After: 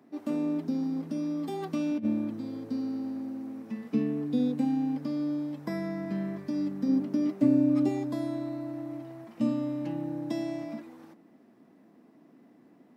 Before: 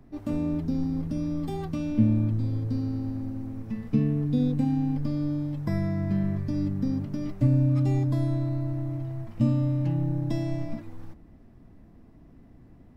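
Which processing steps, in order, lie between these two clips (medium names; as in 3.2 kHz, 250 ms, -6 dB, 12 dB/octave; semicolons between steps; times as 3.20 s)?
high-pass 220 Hz 24 dB/octave; 1.62–2.05 s: compressor with a negative ratio -28 dBFS, ratio -0.5; 6.88–7.89 s: peaking EQ 310 Hz +6.5 dB 1.7 oct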